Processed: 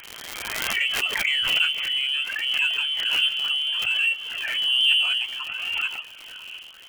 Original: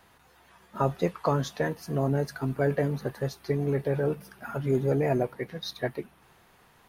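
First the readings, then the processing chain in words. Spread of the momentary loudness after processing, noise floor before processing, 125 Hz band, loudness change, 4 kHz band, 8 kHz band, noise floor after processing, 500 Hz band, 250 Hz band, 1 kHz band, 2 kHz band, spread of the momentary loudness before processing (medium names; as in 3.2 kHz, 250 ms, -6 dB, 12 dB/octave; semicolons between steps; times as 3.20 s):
15 LU, -60 dBFS, under -25 dB, +7.5 dB, +26.0 dB, +11.0 dB, -44 dBFS, -19.0 dB, under -20 dB, -4.0 dB, +16.5 dB, 10 LU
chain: on a send: echo that smears into a reverb 561 ms, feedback 47%, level -14.5 dB; on the sum: phaser 0.61 Hz, delay 2.3 ms, feedback 56%; frequency inversion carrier 3.2 kHz; wow and flutter 23 cents; crackle 200 per s -35 dBFS; bass shelf 390 Hz -3.5 dB; in parallel at -5.5 dB: saturation -24.5 dBFS, distortion -8 dB; on the sum: swell ahead of each attack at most 27 dB/s; trim -2.5 dB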